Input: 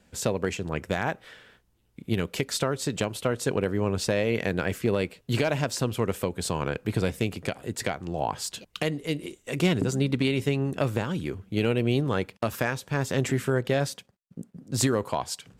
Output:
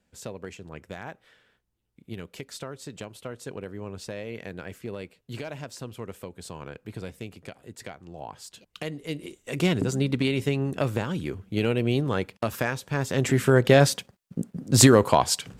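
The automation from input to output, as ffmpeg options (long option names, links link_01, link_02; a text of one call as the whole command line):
ffmpeg -i in.wav -af "volume=9dB,afade=type=in:start_time=8.5:duration=1.18:silence=0.281838,afade=type=in:start_time=13.14:duration=0.66:silence=0.354813" out.wav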